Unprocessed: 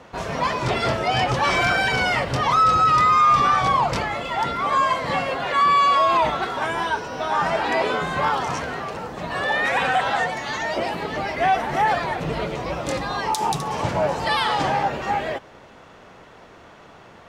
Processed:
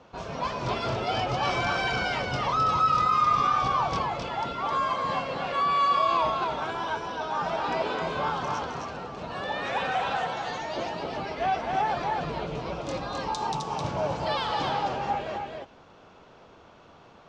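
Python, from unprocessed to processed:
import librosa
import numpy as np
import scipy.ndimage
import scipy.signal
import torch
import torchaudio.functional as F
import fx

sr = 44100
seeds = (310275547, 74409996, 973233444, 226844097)

y = scipy.signal.sosfilt(scipy.signal.butter(4, 6500.0, 'lowpass', fs=sr, output='sos'), x)
y = fx.peak_eq(y, sr, hz=1900.0, db=-8.5, octaves=0.34)
y = y + 10.0 ** (-3.5 / 20.0) * np.pad(y, (int(262 * sr / 1000.0), 0))[:len(y)]
y = F.gain(torch.from_numpy(y), -7.5).numpy()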